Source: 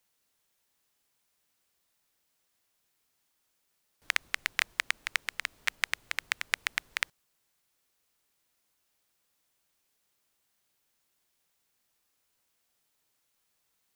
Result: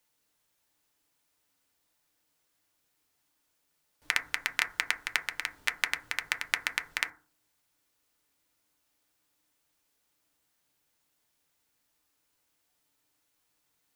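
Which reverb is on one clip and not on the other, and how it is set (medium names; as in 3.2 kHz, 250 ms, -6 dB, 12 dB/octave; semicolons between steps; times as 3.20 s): FDN reverb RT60 0.36 s, low-frequency decay 1.45×, high-frequency decay 0.25×, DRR 5 dB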